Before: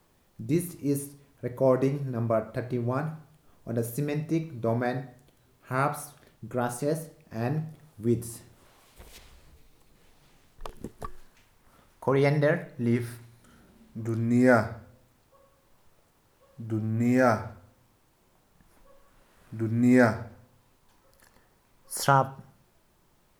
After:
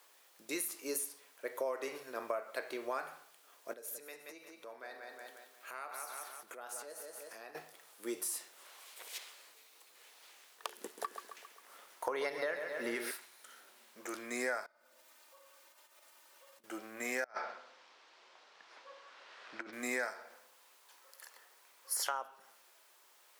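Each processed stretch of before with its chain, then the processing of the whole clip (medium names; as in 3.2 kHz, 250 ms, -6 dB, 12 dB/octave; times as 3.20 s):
3.73–7.55 s: feedback delay 178 ms, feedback 34%, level -9.5 dB + compression 8:1, threshold -41 dBFS
10.71–13.11 s: bass shelf 410 Hz +8 dB + feedback delay 134 ms, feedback 54%, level -10.5 dB
14.66–16.64 s: comb 3.3 ms, depth 70% + compression 16:1, threshold -55 dBFS
17.24–19.73 s: low-pass 5.1 kHz 24 dB/octave + compressor with a negative ratio -32 dBFS, ratio -0.5
whole clip: high-pass 510 Hz 24 dB/octave; peaking EQ 650 Hz -8 dB 1.8 oct; compression 8:1, threshold -40 dBFS; trim +6.5 dB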